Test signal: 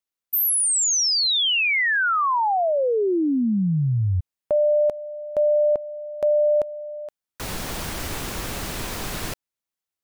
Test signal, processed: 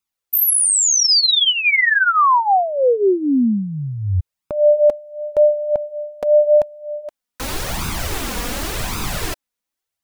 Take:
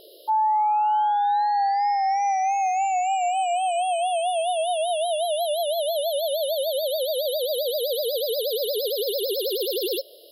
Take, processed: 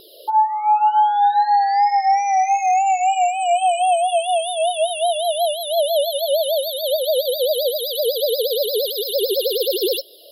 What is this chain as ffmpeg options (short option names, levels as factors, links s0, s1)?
-af "flanger=delay=0.8:depth=3.4:regen=4:speed=0.89:shape=sinusoidal,volume=2.66"